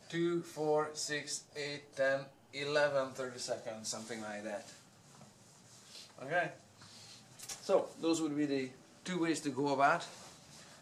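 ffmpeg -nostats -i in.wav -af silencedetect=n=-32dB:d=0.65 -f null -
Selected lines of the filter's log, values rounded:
silence_start: 4.56
silence_end: 6.32 | silence_duration: 1.76
silence_start: 6.47
silence_end: 7.50 | silence_duration: 1.03
silence_start: 9.97
silence_end: 10.82 | silence_duration: 0.85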